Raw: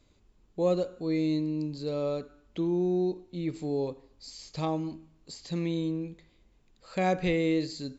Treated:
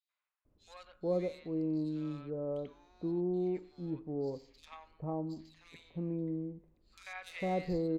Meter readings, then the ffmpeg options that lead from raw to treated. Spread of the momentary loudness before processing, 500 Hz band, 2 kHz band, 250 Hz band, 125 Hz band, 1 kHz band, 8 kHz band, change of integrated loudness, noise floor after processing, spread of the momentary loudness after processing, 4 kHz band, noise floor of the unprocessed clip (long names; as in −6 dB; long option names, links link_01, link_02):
15 LU, −6.5 dB, −8.5 dB, −6.5 dB, −6.5 dB, −8.0 dB, can't be measured, −7.0 dB, below −85 dBFS, 20 LU, −13.0 dB, −65 dBFS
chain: -filter_complex "[0:a]adynamicsmooth=sensitivity=6.5:basefreq=2200,acrossover=split=1100|3300[link_01][link_02][link_03];[link_02]adelay=90[link_04];[link_01]adelay=450[link_05];[link_05][link_04][link_03]amix=inputs=3:normalize=0,volume=-6dB"